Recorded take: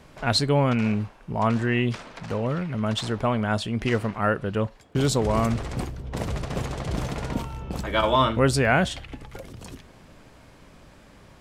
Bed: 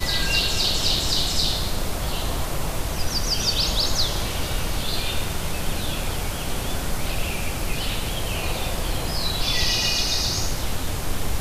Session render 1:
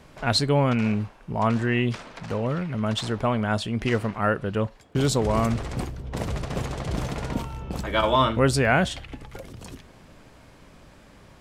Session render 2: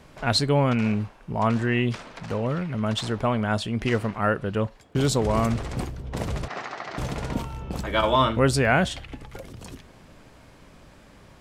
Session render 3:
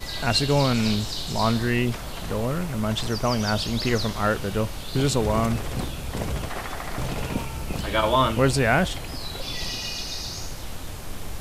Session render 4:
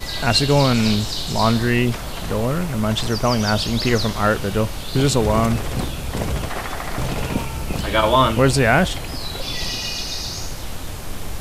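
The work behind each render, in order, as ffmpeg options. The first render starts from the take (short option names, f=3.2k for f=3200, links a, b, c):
-af anull
-filter_complex "[0:a]asplit=3[a][b][c];[a]afade=t=out:st=6.47:d=0.02[d];[b]highpass=460,equalizer=f=500:t=q:w=4:g=-8,equalizer=f=740:t=q:w=4:g=4,equalizer=f=1.3k:t=q:w=4:g=6,equalizer=f=1.9k:t=q:w=4:g=7,equalizer=f=3.3k:t=q:w=4:g=-4,lowpass=f=5.6k:w=0.5412,lowpass=f=5.6k:w=1.3066,afade=t=in:st=6.47:d=0.02,afade=t=out:st=6.97:d=0.02[e];[c]afade=t=in:st=6.97:d=0.02[f];[d][e][f]amix=inputs=3:normalize=0"
-filter_complex "[1:a]volume=-9dB[a];[0:a][a]amix=inputs=2:normalize=0"
-af "volume=5dB,alimiter=limit=-3dB:level=0:latency=1"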